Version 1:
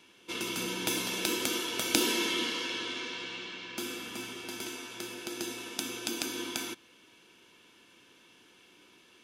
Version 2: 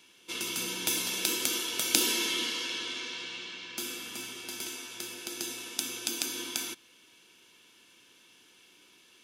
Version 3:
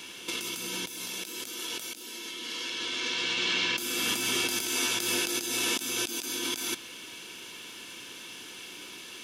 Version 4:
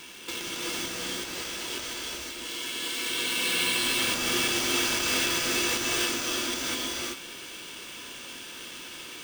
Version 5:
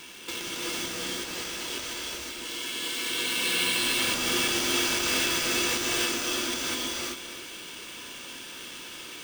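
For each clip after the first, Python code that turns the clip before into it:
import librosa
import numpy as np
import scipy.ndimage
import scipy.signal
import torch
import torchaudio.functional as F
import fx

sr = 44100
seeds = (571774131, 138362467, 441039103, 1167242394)

y1 = fx.high_shelf(x, sr, hz=2800.0, db=10.0)
y1 = y1 * 10.0 ** (-4.5 / 20.0)
y2 = fx.over_compress(y1, sr, threshold_db=-43.0, ratio=-1.0)
y2 = fx.dmg_crackle(y2, sr, seeds[0], per_s=49.0, level_db=-58.0)
y2 = y2 * 10.0 ** (9.0 / 20.0)
y3 = fx.sample_hold(y2, sr, seeds[1], rate_hz=12000.0, jitter_pct=0)
y3 = fx.rev_gated(y3, sr, seeds[2], gate_ms=420, shape='rising', drr_db=-2.0)
y3 = y3 * 10.0 ** (-1.5 / 20.0)
y4 = y3 + 10.0 ** (-12.5 / 20.0) * np.pad(y3, (int(285 * sr / 1000.0), 0))[:len(y3)]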